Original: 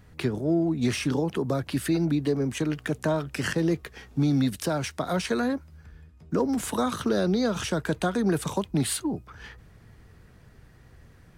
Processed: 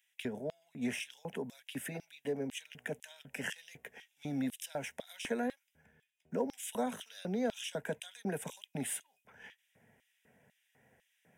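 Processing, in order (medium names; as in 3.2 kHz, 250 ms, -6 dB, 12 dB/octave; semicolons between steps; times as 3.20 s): static phaser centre 1.2 kHz, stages 6; LFO high-pass square 2 Hz 270–3400 Hz; trim -6 dB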